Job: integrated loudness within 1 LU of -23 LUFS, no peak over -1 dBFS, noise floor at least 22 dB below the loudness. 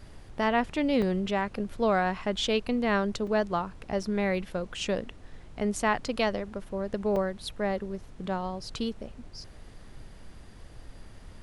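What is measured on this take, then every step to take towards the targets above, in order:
dropouts 4; longest dropout 3.7 ms; noise floor -49 dBFS; noise floor target -52 dBFS; loudness -29.5 LUFS; peak -13.5 dBFS; loudness target -23.0 LUFS
-> interpolate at 1.02/3.27/4.03/7.16, 3.7 ms; noise print and reduce 6 dB; gain +6.5 dB

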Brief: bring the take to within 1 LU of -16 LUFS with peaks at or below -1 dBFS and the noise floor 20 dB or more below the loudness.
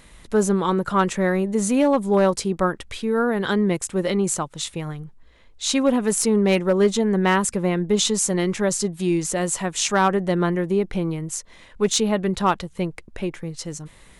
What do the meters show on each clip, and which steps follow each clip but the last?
clipped 0.5%; flat tops at -10.0 dBFS; loudness -21.5 LUFS; peak -10.0 dBFS; loudness target -16.0 LUFS
-> clip repair -10 dBFS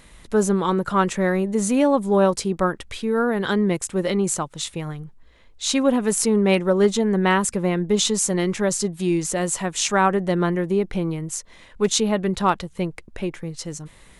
clipped 0.0%; loudness -21.5 LUFS; peak -4.0 dBFS; loudness target -16.0 LUFS
-> gain +5.5 dB; limiter -1 dBFS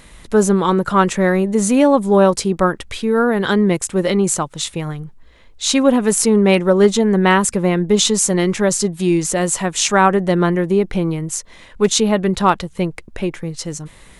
loudness -16.0 LUFS; peak -1.0 dBFS; noise floor -44 dBFS

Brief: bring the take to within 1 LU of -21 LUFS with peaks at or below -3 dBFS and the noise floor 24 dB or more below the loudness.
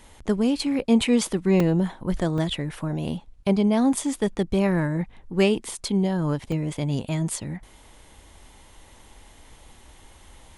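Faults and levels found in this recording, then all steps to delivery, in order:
dropouts 3; longest dropout 2.2 ms; loudness -24.0 LUFS; peak -7.5 dBFS; loudness target -21.0 LUFS
-> interpolate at 1.6/2.38/6.52, 2.2 ms; gain +3 dB

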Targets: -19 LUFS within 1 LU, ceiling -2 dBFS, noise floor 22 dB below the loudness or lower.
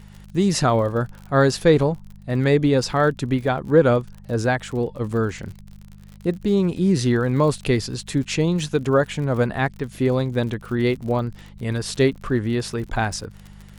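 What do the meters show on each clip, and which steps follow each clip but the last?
ticks 53/s; hum 50 Hz; harmonics up to 200 Hz; hum level -41 dBFS; loudness -21.5 LUFS; peak -3.5 dBFS; loudness target -19.0 LUFS
-> de-click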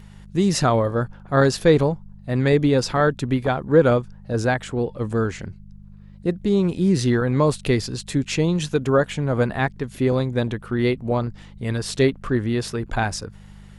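ticks 0.15/s; hum 50 Hz; harmonics up to 200 Hz; hum level -41 dBFS
-> de-hum 50 Hz, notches 4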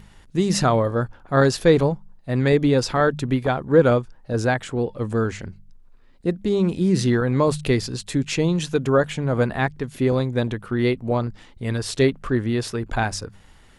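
hum none; loudness -21.5 LUFS; peak -3.5 dBFS; loudness target -19.0 LUFS
-> gain +2.5 dB; limiter -2 dBFS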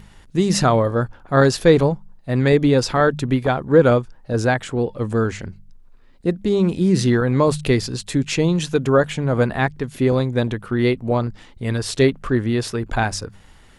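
loudness -19.5 LUFS; peak -2.0 dBFS; noise floor -48 dBFS

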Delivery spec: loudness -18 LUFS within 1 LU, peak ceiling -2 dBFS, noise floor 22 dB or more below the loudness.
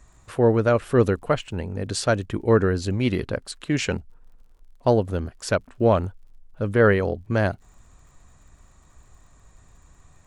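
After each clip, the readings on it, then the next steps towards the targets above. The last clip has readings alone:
ticks 51/s; loudness -23.0 LUFS; peak -6.0 dBFS; loudness target -18.0 LUFS
-> de-click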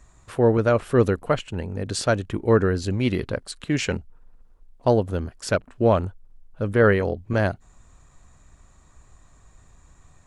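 ticks 0/s; loudness -23.0 LUFS; peak -6.0 dBFS; loudness target -18.0 LUFS
-> gain +5 dB; limiter -2 dBFS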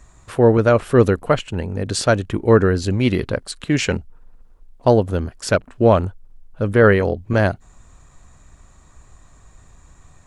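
loudness -18.0 LUFS; peak -2.0 dBFS; noise floor -50 dBFS

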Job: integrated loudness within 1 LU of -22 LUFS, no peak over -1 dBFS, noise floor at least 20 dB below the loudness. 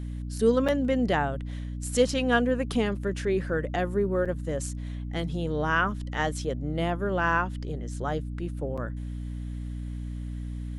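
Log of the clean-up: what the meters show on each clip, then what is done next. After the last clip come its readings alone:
dropouts 3; longest dropout 6.4 ms; hum 60 Hz; harmonics up to 300 Hz; hum level -32 dBFS; loudness -28.5 LUFS; peak -10.5 dBFS; loudness target -22.0 LUFS
-> interpolate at 0.68/4.25/8.77, 6.4 ms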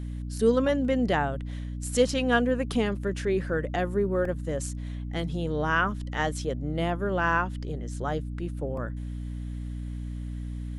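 dropouts 0; hum 60 Hz; harmonics up to 300 Hz; hum level -32 dBFS
-> de-hum 60 Hz, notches 5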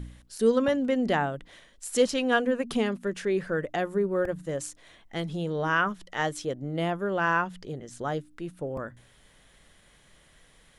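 hum none; loudness -28.0 LUFS; peak -11.0 dBFS; loudness target -22.0 LUFS
-> gain +6 dB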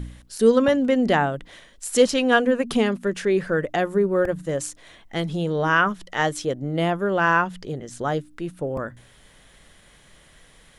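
loudness -22.0 LUFS; peak -5.0 dBFS; noise floor -53 dBFS

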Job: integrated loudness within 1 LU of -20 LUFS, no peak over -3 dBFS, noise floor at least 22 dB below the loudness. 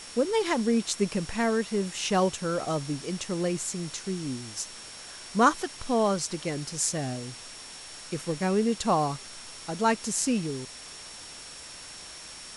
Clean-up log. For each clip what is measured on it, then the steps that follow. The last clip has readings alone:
steady tone 5500 Hz; tone level -47 dBFS; noise floor -44 dBFS; noise floor target -51 dBFS; loudness -28.5 LUFS; peak -9.0 dBFS; loudness target -20.0 LUFS
-> notch 5500 Hz, Q 30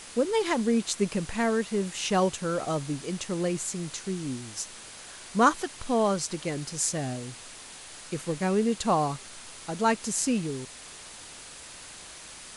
steady tone none; noise floor -45 dBFS; noise floor target -51 dBFS
-> noise print and reduce 6 dB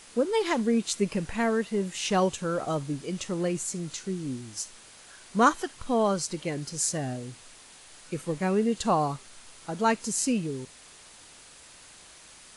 noise floor -51 dBFS; loudness -28.5 LUFS; peak -9.5 dBFS; loudness target -20.0 LUFS
-> gain +8.5 dB; limiter -3 dBFS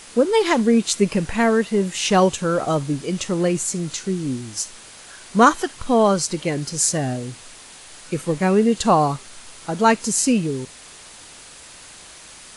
loudness -20.0 LUFS; peak -3.0 dBFS; noise floor -43 dBFS

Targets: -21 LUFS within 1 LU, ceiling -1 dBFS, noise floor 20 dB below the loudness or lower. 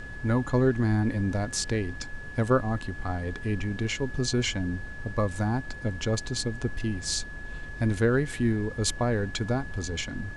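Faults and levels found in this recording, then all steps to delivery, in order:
steady tone 1700 Hz; tone level -41 dBFS; noise floor -40 dBFS; noise floor target -49 dBFS; loudness -28.5 LUFS; peak -11.5 dBFS; loudness target -21.0 LUFS
-> notch 1700 Hz, Q 30; noise print and reduce 9 dB; gain +7.5 dB

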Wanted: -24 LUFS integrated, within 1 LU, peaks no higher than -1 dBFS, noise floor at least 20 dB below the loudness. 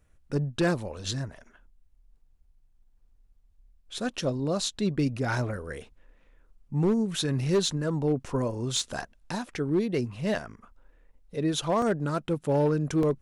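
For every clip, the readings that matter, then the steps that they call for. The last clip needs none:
clipped 0.5%; flat tops at -18.5 dBFS; dropouts 2; longest dropout 1.9 ms; loudness -28.5 LUFS; peak -18.5 dBFS; loudness target -24.0 LUFS
-> clip repair -18.5 dBFS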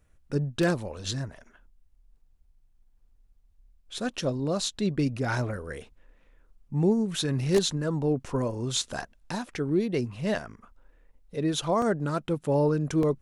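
clipped 0.0%; dropouts 2; longest dropout 1.9 ms
-> interpolate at 11.82/13.03, 1.9 ms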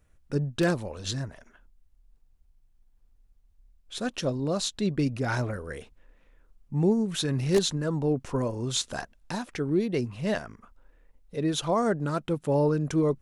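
dropouts 0; loudness -28.5 LUFS; peak -10.0 dBFS; loudness target -24.0 LUFS
-> gain +4.5 dB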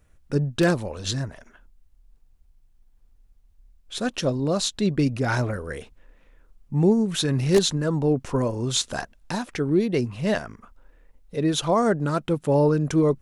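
loudness -24.0 LUFS; peak -5.5 dBFS; noise floor -59 dBFS

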